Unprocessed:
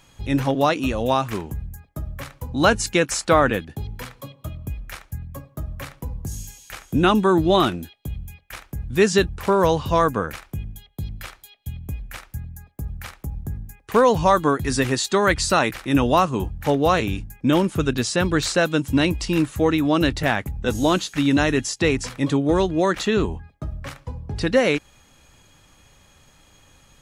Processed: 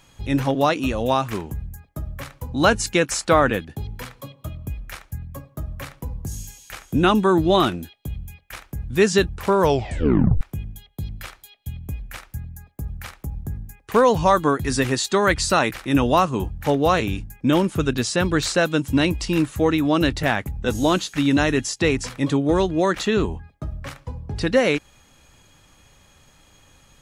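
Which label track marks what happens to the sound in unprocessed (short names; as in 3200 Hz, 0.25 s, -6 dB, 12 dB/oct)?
9.620000	9.620000	tape stop 0.79 s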